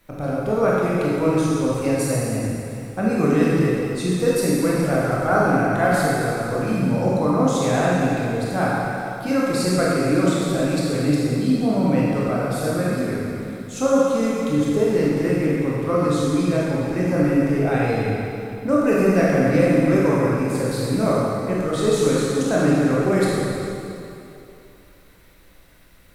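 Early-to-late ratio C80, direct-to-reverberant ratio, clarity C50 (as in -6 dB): -1.5 dB, -6.5 dB, -3.5 dB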